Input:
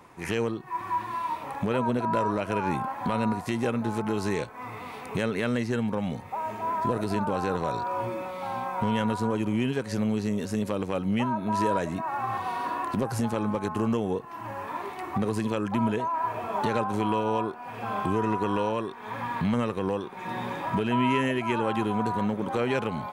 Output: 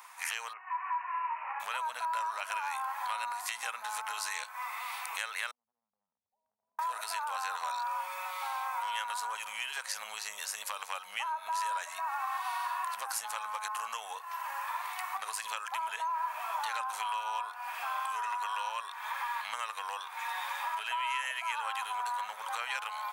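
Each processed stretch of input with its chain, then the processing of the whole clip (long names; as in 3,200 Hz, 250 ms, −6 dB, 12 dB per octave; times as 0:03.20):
0:00.53–0:01.60: linear-phase brick-wall high-pass 200 Hz + bad sample-rate conversion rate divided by 8×, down none, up filtered
0:05.51–0:06.79: inverse Chebyshev low-pass filter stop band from 1,300 Hz, stop band 80 dB + downward compressor 10 to 1, threshold −47 dBFS
whole clip: inverse Chebyshev high-pass filter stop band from 350 Hz, stop band 50 dB; high-shelf EQ 6,400 Hz +11 dB; downward compressor 2.5 to 1, threshold −37 dBFS; level +3 dB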